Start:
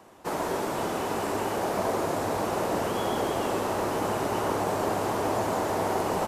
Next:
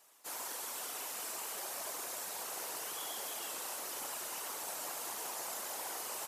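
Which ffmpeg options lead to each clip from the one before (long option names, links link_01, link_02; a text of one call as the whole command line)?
ffmpeg -i in.wav -af "afftfilt=real='hypot(re,im)*cos(2*PI*random(0))':imag='hypot(re,im)*sin(2*PI*random(1))':win_size=512:overlap=0.75,aderivative,volume=6.5dB" out.wav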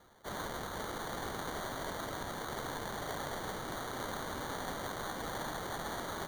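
ffmpeg -i in.wav -af "acrusher=samples=17:mix=1:aa=0.000001,volume=2dB" out.wav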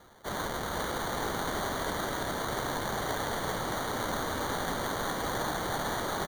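ffmpeg -i in.wav -af "aecho=1:1:405:0.562,volume=6dB" out.wav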